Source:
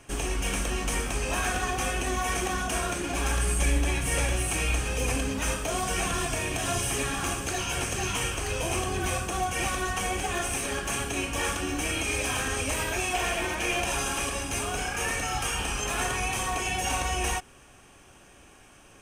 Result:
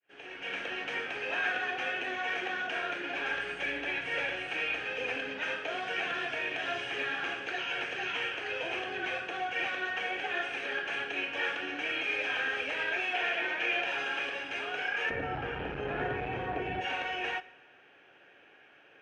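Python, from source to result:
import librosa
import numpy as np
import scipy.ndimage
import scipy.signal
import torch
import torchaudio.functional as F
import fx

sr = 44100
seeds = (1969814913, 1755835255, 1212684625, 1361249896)

y = fx.fade_in_head(x, sr, length_s=0.65)
y = fx.tilt_eq(y, sr, slope=fx.steps((0.0, 3.0), (15.09, -3.5), (16.8, 2.0)))
y = np.clip(y, -10.0 ** (-17.0 / 20.0), 10.0 ** (-17.0 / 20.0))
y = fx.cabinet(y, sr, low_hz=200.0, low_slope=12, high_hz=2900.0, hz=(220.0, 470.0, 1100.0, 1600.0), db=(-8, 4, -10, 6))
y = fx.rev_plate(y, sr, seeds[0], rt60_s=1.1, hf_ratio=0.85, predelay_ms=0, drr_db=16.5)
y = F.gain(torch.from_numpy(y), -3.5).numpy()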